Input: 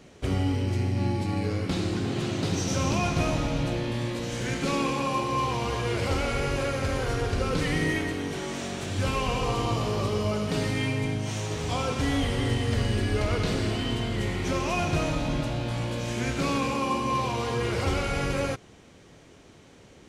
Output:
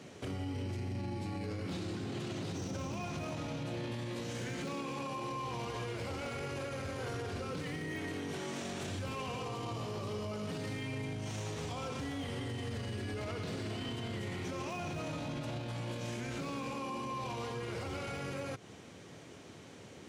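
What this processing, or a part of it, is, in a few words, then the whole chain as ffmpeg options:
podcast mastering chain: -af "highpass=f=84:w=0.5412,highpass=f=84:w=1.3066,deesser=0.95,acompressor=threshold=-33dB:ratio=6,alimiter=level_in=8dB:limit=-24dB:level=0:latency=1:release=19,volume=-8dB,volume=1dB" -ar 44100 -c:a libmp3lame -b:a 96k

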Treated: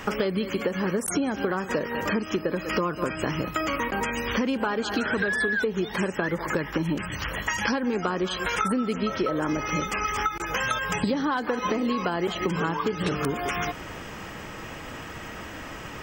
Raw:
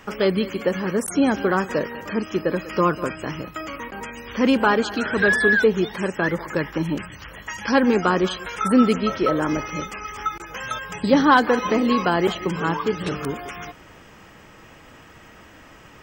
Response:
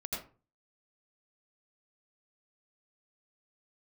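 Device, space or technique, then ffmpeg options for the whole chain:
serial compression, leveller first: -af "acompressor=threshold=-21dB:ratio=2.5,acompressor=threshold=-32dB:ratio=6,volume=8.5dB"

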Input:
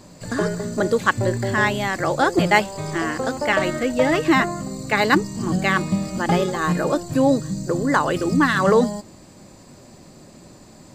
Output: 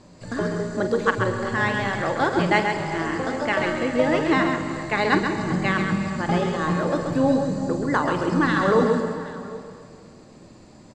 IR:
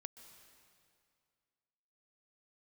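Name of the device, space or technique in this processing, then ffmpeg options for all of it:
swimming-pool hall: -filter_complex "[1:a]atrim=start_sample=2205[a];[0:a][a]afir=irnorm=-1:irlink=0,lowpass=7.5k,highshelf=f=5.7k:g=-6,asplit=2[b][c];[c]adelay=45,volume=-12dB[d];[b][d]amix=inputs=2:normalize=0,aecho=1:1:133|384|775:0.501|0.15|0.106,volume=2dB"

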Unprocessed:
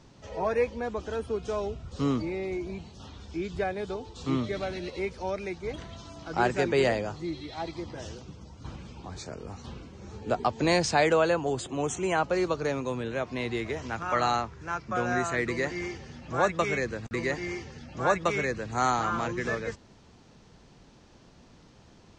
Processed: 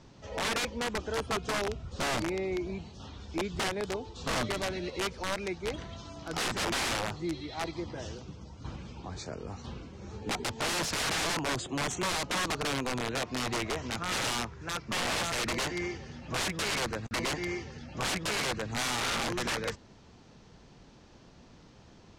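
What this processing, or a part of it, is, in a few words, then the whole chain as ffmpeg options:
overflowing digital effects unit: -af "aeval=exprs='(mod(17.8*val(0)+1,2)-1)/17.8':c=same,lowpass=8.3k"

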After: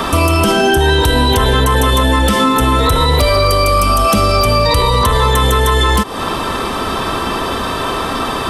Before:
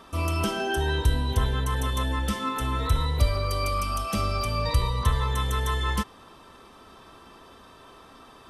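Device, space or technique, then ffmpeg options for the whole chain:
mastering chain: -filter_complex "[0:a]equalizer=f=5.9k:t=o:w=0.3:g=-3.5,acrossover=split=260|820|4500[a][b][c][d];[a]acompressor=threshold=-38dB:ratio=4[e];[b]acompressor=threshold=-38dB:ratio=4[f];[c]acompressor=threshold=-41dB:ratio=4[g];[d]acompressor=threshold=-45dB:ratio=4[h];[e][f][g][h]amix=inputs=4:normalize=0,acompressor=threshold=-40dB:ratio=2,asoftclip=type=tanh:threshold=-29dB,alimiter=level_in=34.5dB:limit=-1dB:release=50:level=0:latency=1,volume=-3dB"

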